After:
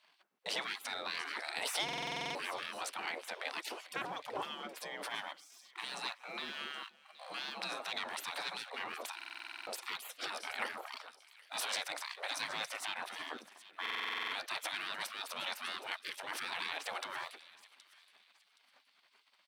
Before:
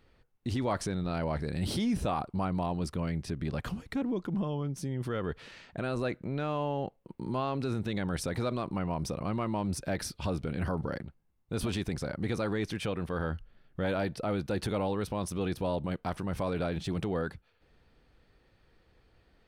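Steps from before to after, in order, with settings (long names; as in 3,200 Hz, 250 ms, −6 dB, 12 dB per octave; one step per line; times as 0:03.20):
leveller curve on the samples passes 1
high-shelf EQ 4,500 Hz −7.5 dB
single-tap delay 379 ms −23 dB
gate on every frequency bin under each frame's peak −25 dB weak
high-pass filter 170 Hz 24 dB per octave
notch filter 6,700 Hz, Q 23
on a send: delay with a high-pass on its return 771 ms, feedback 31%, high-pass 2,800 Hz, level −15 dB
on the sum: buffer that repeats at 0:01.84/0:09.16/0:13.81, samples 2,048, times 10
level +9 dB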